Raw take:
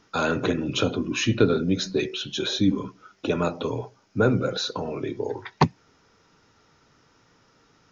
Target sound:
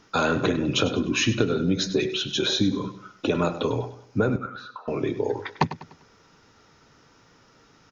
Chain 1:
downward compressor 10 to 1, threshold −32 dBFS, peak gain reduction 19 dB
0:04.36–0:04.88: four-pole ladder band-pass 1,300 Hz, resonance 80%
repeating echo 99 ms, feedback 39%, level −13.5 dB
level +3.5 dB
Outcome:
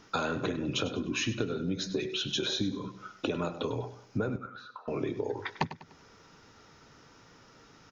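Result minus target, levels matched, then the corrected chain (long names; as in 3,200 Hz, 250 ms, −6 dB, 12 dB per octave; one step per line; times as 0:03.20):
downward compressor: peak gain reduction +9.5 dB
downward compressor 10 to 1, threshold −21.5 dBFS, peak gain reduction 10 dB
0:04.36–0:04.88: four-pole ladder band-pass 1,300 Hz, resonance 80%
repeating echo 99 ms, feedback 39%, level −13.5 dB
level +3.5 dB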